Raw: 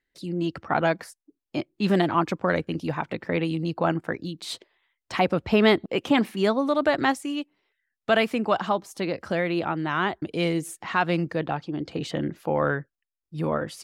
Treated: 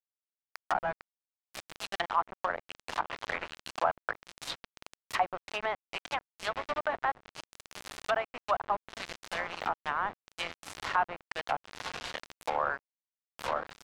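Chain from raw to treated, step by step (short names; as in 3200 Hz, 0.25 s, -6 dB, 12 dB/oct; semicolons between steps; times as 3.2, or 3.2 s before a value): HPF 730 Hz 24 dB/oct; diffused feedback echo 0.929 s, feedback 47%, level -7 dB; harmonic-percussive split percussive +3 dB; vocal rider within 4 dB 2 s; sample gate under -25.5 dBFS; treble ducked by the level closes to 1100 Hz, closed at -23 dBFS; gain -3 dB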